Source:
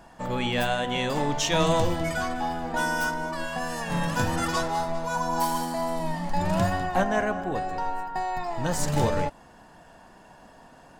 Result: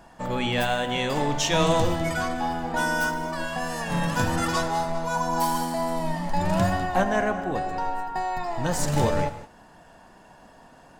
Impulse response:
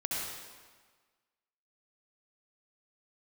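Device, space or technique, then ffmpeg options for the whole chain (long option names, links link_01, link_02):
keyed gated reverb: -filter_complex "[0:a]asplit=3[link_01][link_02][link_03];[1:a]atrim=start_sample=2205[link_04];[link_02][link_04]afir=irnorm=-1:irlink=0[link_05];[link_03]apad=whole_len=485081[link_06];[link_05][link_06]sidechaingate=range=-33dB:threshold=-45dB:ratio=16:detection=peak,volume=-15.5dB[link_07];[link_01][link_07]amix=inputs=2:normalize=0"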